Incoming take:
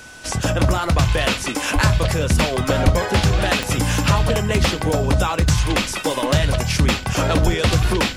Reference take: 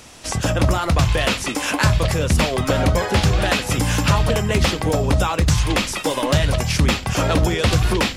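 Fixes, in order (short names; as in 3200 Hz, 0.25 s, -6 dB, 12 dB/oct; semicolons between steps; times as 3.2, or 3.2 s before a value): de-click; notch 1500 Hz, Q 30; 1.74–1.86 HPF 140 Hz 24 dB/oct; 2.84–2.96 HPF 140 Hz 24 dB/oct; 7.45–7.57 HPF 140 Hz 24 dB/oct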